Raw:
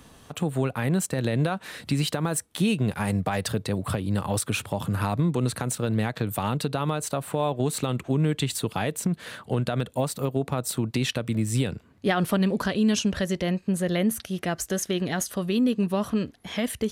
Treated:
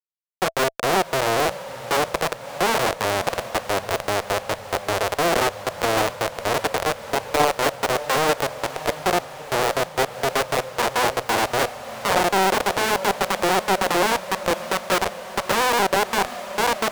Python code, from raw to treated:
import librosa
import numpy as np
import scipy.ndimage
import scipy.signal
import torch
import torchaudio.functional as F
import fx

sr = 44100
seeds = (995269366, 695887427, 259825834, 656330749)

p1 = fx.bin_expand(x, sr, power=2.0)
p2 = fx.small_body(p1, sr, hz=(240.0, 3500.0), ring_ms=50, db=16)
p3 = fx.rider(p2, sr, range_db=4, speed_s=2.0)
p4 = p2 + F.gain(torch.from_numpy(p3), -3.0).numpy()
p5 = fx.tilt_shelf(p4, sr, db=9.0, hz=1200.0)
p6 = fx.hum_notches(p5, sr, base_hz=60, count=4)
p7 = fx.schmitt(p6, sr, flips_db=-14.5)
p8 = fx.highpass(p7, sr, hz=180.0, slope=6)
p9 = fx.low_shelf_res(p8, sr, hz=410.0, db=-10.0, q=3.0)
p10 = fx.notch(p9, sr, hz=660.0, q=16.0)
p11 = p10 + fx.echo_diffused(p10, sr, ms=627, feedback_pct=59, wet_db=-14.0, dry=0)
p12 = fx.doppler_dist(p11, sr, depth_ms=0.7)
y = F.gain(torch.from_numpy(p12), -4.0).numpy()